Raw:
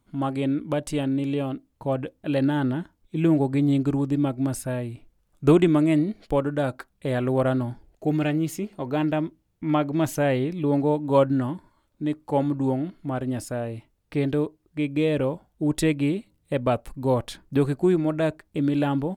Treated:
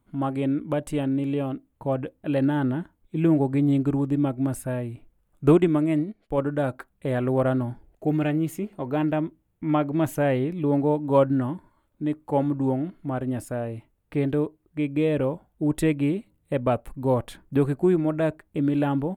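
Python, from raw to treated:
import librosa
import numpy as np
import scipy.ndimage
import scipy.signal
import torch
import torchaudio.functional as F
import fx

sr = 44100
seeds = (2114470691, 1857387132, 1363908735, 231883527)

y = fx.peak_eq(x, sr, hz=5100.0, db=-11.0, octaves=1.2)
y = fx.upward_expand(y, sr, threshold_db=-41.0, expansion=1.5, at=(5.55, 6.38))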